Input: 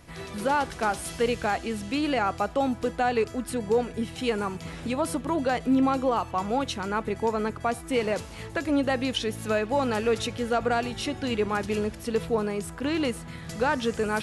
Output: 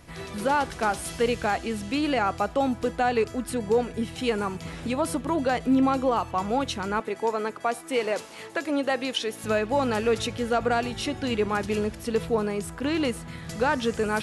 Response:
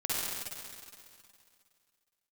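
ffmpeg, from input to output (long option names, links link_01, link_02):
-filter_complex "[0:a]asettb=1/sr,asplit=3[link_01][link_02][link_03];[link_01]atrim=end=7.004[link_04];[link_02]atrim=start=7:end=9.44,asetpts=PTS-STARTPTS,afade=type=in:duration=0.004:curve=qsin,afade=type=out:start_time=2.436:duration=0.004:curve=qsin,highpass=310[link_05];[link_03]atrim=start=9.436[link_06];[link_04][link_05]acrossfade=duration=0.004:curve1=hsin:curve2=qsin[link_07];[link_07][link_06]acrossfade=duration=0.004:curve1=qsin:curve2=hsin,volume=1dB"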